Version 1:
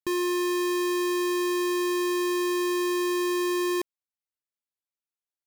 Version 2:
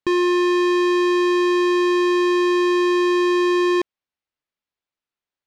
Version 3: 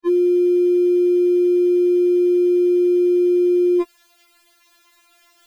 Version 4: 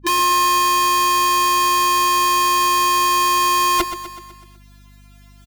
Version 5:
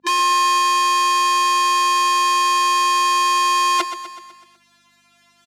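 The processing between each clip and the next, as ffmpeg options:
-af "lowpass=3.9k,volume=8.5dB"
-af "lowshelf=f=230:g=-11.5,areverse,acompressor=mode=upward:threshold=-25dB:ratio=2.5,areverse,afftfilt=real='re*4*eq(mod(b,16),0)':imag='im*4*eq(mod(b,16),0)':win_size=2048:overlap=0.75"
-af "aeval=exprs='(mod(5.01*val(0)+1,2)-1)/5.01':c=same,aecho=1:1:125|250|375|500|625|750:0.266|0.149|0.0834|0.0467|0.0262|0.0147,aeval=exprs='val(0)+0.00562*(sin(2*PI*50*n/s)+sin(2*PI*2*50*n/s)/2+sin(2*PI*3*50*n/s)/3+sin(2*PI*4*50*n/s)/4+sin(2*PI*5*50*n/s)/5)':c=same"
-af "highpass=480,lowpass=8k"

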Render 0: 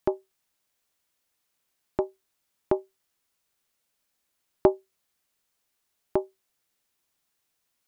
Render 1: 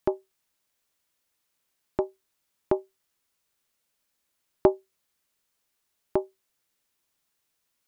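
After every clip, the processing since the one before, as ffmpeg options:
-af "bandreject=f=740:w=19"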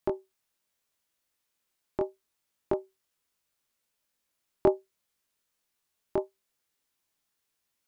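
-af "flanger=delay=20:depth=3:speed=0.74"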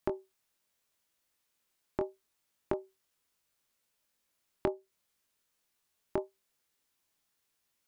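-af "acompressor=threshold=-30dB:ratio=5,volume=1dB"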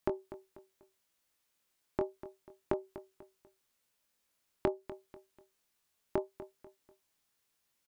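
-af "aecho=1:1:245|490|735:0.188|0.0678|0.0244"

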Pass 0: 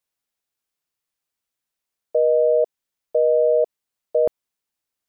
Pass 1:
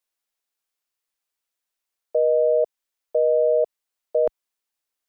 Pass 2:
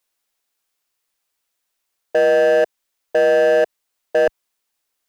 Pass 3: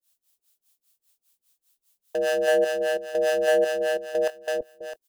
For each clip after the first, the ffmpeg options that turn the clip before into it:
-af "equalizer=f=120:t=o:w=1.8:g=-14.5"
-af "volume=20dB,asoftclip=hard,volume=-20dB,volume=8.5dB"
-filter_complex "[0:a]aecho=1:1:329|658|987|1316:0.708|0.241|0.0818|0.0278,aexciter=amount=2.7:drive=6:freq=2.9k,acrossover=split=550[a][b];[a]aeval=exprs='val(0)*(1-1/2+1/2*cos(2*PI*5*n/s))':c=same[c];[b]aeval=exprs='val(0)*(1-1/2-1/2*cos(2*PI*5*n/s))':c=same[d];[c][d]amix=inputs=2:normalize=0,volume=-4dB"

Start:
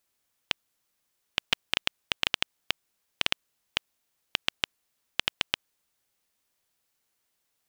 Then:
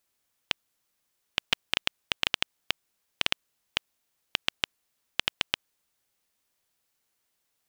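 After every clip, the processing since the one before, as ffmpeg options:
-af anull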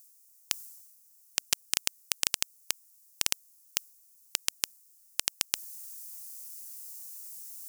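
-af "areverse,acompressor=mode=upward:threshold=-46dB:ratio=2.5,areverse,aexciter=amount=15.2:drive=2.5:freq=5k,volume=-7dB"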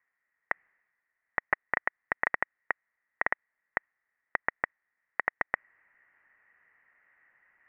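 -af "highpass=f=1.7k:t=q:w=11,lowpass=f=3.1k:t=q:w=0.5098,lowpass=f=3.1k:t=q:w=0.6013,lowpass=f=3.1k:t=q:w=0.9,lowpass=f=3.1k:t=q:w=2.563,afreqshift=-3600"

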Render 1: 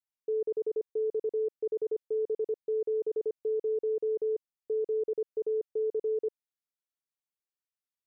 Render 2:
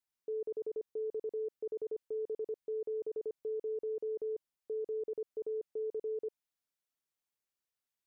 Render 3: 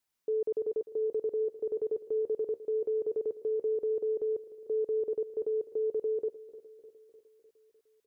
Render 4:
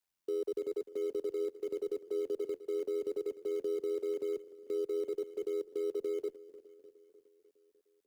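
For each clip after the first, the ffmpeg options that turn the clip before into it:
-af "alimiter=level_in=11dB:limit=-24dB:level=0:latency=1:release=16,volume=-11dB,volume=2dB"
-af "aecho=1:1:302|604|906|1208|1510|1812:0.168|0.099|0.0584|0.0345|0.0203|0.012,volume=7dB"
-filter_complex "[0:a]acrossover=split=150|300[a][b][c];[b]acrusher=bits=2:mode=log:mix=0:aa=0.000001[d];[a][d][c]amix=inputs=3:normalize=0,tremolo=f=87:d=0.621,afreqshift=-24,volume=-1.5dB"

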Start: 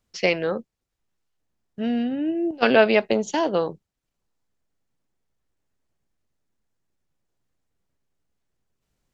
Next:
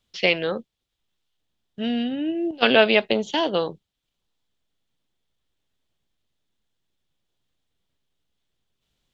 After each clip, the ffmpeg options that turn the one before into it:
-filter_complex "[0:a]acrossover=split=4300[a][b];[b]acompressor=threshold=-46dB:ratio=4:attack=1:release=60[c];[a][c]amix=inputs=2:normalize=0,equalizer=f=3.4k:w=2:g=13.5,volume=-1dB"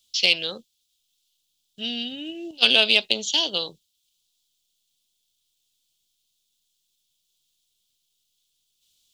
-af "aexciter=amount=12:drive=5.4:freq=2.8k,volume=-10dB"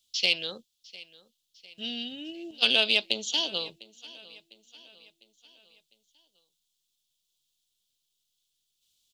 -af "aecho=1:1:702|1404|2106|2808:0.0891|0.0455|0.0232|0.0118,volume=-5.5dB"

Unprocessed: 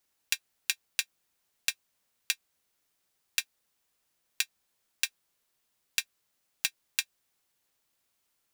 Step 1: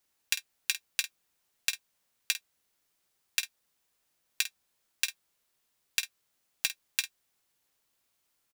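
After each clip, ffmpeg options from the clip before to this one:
-af "aecho=1:1:17|50:0.158|0.251"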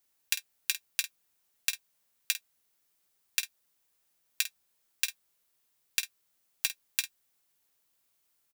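-af "highshelf=f=9.7k:g=7,volume=-2dB"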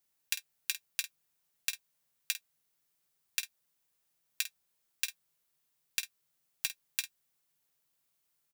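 -af "equalizer=f=150:w=6.2:g=11.5,volume=-4dB"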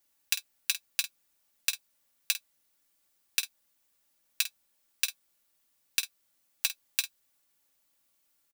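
-af "aecho=1:1:3.5:0.59,volume=4dB"

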